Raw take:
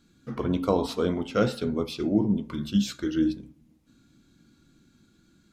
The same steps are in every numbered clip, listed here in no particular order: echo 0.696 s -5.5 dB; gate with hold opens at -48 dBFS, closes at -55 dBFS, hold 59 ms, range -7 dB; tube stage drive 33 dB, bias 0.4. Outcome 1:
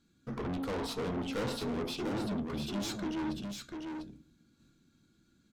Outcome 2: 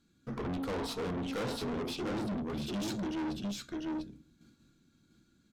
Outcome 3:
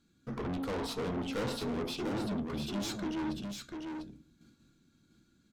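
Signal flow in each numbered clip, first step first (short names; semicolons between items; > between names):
tube stage > gate with hold > echo; gate with hold > echo > tube stage; gate with hold > tube stage > echo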